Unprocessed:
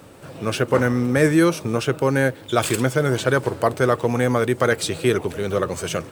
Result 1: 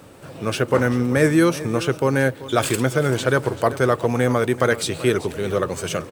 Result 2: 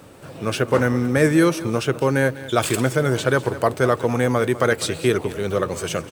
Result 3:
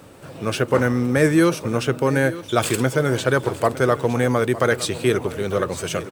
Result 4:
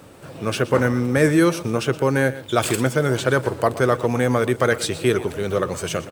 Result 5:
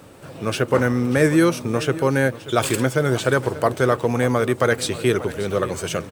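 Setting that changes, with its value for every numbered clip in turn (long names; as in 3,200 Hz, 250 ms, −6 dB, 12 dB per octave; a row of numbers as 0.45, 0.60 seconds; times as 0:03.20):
single-tap delay, delay time: 387, 201, 909, 120, 587 milliseconds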